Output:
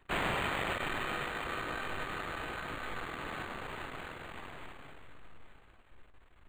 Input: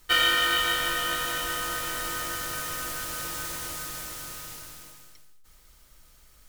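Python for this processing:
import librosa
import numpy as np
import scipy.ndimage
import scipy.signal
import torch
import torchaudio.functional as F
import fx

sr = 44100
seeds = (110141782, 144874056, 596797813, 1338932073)

p1 = fx.cycle_switch(x, sr, every=3, mode='muted')
p2 = fx.comb_fb(p1, sr, f0_hz=390.0, decay_s=0.26, harmonics='all', damping=0.0, mix_pct=80)
p3 = (np.mod(10.0 ** (31.5 / 20.0) * p2 + 1.0, 2.0) - 1.0) / 10.0 ** (31.5 / 20.0)
p4 = p3 + fx.echo_single(p3, sr, ms=875, db=-13.0, dry=0)
p5 = np.interp(np.arange(len(p4)), np.arange(len(p4))[::8], p4[::8])
y = F.gain(torch.from_numpy(p5), 7.0).numpy()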